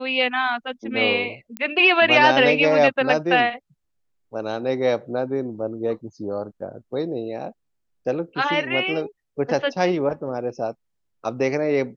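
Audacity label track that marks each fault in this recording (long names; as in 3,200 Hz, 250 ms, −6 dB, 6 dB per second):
1.570000	1.570000	click −14 dBFS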